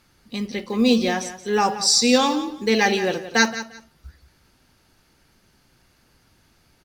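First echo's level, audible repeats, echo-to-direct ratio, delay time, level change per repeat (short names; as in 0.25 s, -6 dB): -13.0 dB, 2, -13.0 dB, 0.175 s, -13.5 dB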